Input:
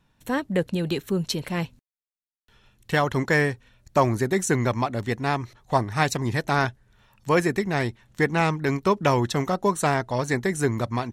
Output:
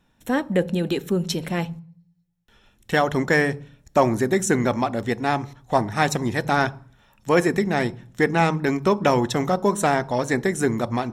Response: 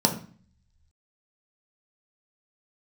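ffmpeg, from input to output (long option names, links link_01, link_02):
-filter_complex "[0:a]acontrast=21,asplit=2[link_01][link_02];[1:a]atrim=start_sample=2205,asetrate=41013,aresample=44100,lowshelf=frequency=370:gain=-5[link_03];[link_02][link_03]afir=irnorm=-1:irlink=0,volume=-23dB[link_04];[link_01][link_04]amix=inputs=2:normalize=0,volume=-4dB"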